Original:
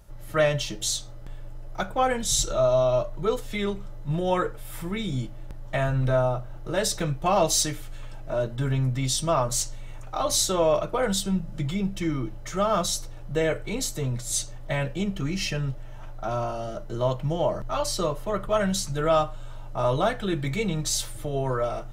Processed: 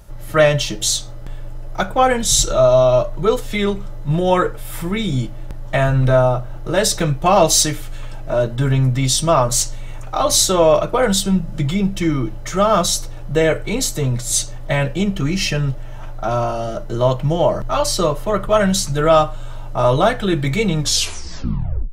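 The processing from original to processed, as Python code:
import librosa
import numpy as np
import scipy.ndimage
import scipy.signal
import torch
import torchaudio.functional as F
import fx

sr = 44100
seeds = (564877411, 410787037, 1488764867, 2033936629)

y = fx.tape_stop_end(x, sr, length_s=1.16)
y = y * 10.0 ** (9.0 / 20.0)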